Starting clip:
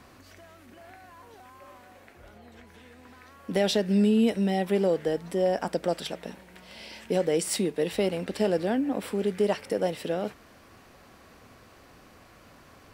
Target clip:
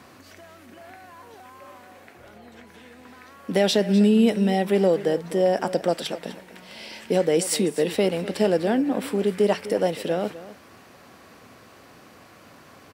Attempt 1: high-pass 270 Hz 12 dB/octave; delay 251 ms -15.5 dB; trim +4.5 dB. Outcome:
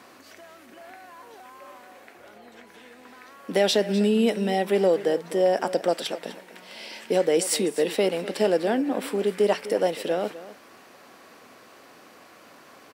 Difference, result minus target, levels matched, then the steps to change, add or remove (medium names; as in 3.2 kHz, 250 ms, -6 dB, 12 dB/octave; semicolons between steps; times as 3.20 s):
125 Hz band -5.0 dB
change: high-pass 110 Hz 12 dB/octave